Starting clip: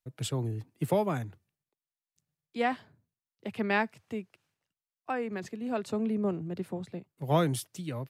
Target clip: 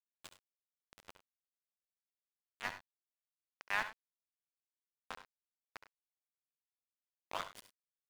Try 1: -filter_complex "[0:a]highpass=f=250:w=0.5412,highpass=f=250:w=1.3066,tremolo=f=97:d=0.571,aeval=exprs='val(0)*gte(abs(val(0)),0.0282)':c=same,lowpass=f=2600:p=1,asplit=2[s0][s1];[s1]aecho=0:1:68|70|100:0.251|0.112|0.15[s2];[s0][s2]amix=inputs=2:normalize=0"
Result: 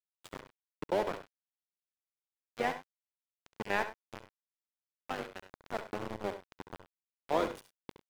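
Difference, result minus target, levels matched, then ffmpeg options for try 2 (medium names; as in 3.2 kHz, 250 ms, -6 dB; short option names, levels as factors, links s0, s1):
250 Hz band +15.5 dB
-filter_complex "[0:a]highpass=f=960:w=0.5412,highpass=f=960:w=1.3066,tremolo=f=97:d=0.571,aeval=exprs='val(0)*gte(abs(val(0)),0.0282)':c=same,lowpass=f=2600:p=1,asplit=2[s0][s1];[s1]aecho=0:1:68|70|100:0.251|0.112|0.15[s2];[s0][s2]amix=inputs=2:normalize=0"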